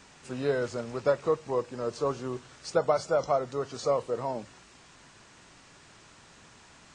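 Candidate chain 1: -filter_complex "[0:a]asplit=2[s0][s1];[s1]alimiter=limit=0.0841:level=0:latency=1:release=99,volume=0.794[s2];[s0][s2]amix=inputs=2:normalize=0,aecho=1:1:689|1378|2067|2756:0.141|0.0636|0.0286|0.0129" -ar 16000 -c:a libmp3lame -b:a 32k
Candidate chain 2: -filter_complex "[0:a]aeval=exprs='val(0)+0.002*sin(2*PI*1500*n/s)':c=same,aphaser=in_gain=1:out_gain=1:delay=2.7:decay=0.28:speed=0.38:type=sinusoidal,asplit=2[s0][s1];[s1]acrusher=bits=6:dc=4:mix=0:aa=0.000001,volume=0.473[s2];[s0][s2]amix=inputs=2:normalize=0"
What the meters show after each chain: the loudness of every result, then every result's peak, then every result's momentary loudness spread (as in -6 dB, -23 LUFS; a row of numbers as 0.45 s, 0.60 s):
-27.0 LUFS, -26.5 LUFS; -10.5 dBFS, -7.0 dBFS; 19 LU, 9 LU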